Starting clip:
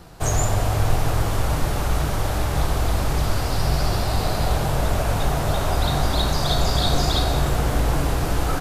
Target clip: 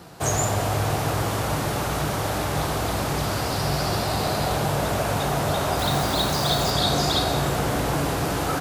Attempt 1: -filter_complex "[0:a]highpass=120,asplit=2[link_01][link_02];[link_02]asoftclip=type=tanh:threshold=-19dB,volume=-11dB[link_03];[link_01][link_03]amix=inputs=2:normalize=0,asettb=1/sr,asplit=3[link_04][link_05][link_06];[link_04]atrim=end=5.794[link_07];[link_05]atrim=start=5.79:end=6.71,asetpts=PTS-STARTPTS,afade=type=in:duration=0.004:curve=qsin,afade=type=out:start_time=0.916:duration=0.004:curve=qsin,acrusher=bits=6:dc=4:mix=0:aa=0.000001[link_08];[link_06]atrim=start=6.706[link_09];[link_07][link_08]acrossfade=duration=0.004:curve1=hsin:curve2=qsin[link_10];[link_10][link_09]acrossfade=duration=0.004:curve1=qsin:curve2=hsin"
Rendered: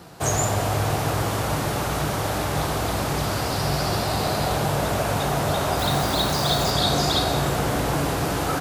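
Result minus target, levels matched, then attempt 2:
soft clipping: distortion −7 dB
-filter_complex "[0:a]highpass=120,asplit=2[link_01][link_02];[link_02]asoftclip=type=tanh:threshold=-26.5dB,volume=-11dB[link_03];[link_01][link_03]amix=inputs=2:normalize=0,asettb=1/sr,asplit=3[link_04][link_05][link_06];[link_04]atrim=end=5.794[link_07];[link_05]atrim=start=5.79:end=6.71,asetpts=PTS-STARTPTS,afade=type=in:duration=0.004:curve=qsin,afade=type=out:start_time=0.916:duration=0.004:curve=qsin,acrusher=bits=6:dc=4:mix=0:aa=0.000001[link_08];[link_06]atrim=start=6.706[link_09];[link_07][link_08]acrossfade=duration=0.004:curve1=hsin:curve2=qsin[link_10];[link_10][link_09]acrossfade=duration=0.004:curve1=qsin:curve2=hsin"

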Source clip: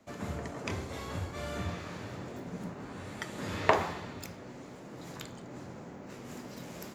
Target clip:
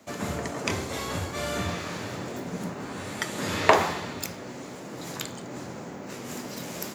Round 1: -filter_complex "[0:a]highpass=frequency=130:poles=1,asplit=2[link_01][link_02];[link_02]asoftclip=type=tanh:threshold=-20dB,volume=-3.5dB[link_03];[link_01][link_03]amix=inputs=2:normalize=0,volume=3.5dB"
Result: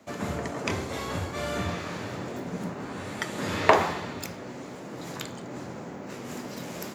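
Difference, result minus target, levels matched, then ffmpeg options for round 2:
8,000 Hz band −4.0 dB
-filter_complex "[0:a]highpass=frequency=130:poles=1,highshelf=frequency=4000:gain=6.5,asplit=2[link_01][link_02];[link_02]asoftclip=type=tanh:threshold=-20dB,volume=-3.5dB[link_03];[link_01][link_03]amix=inputs=2:normalize=0,volume=3.5dB"

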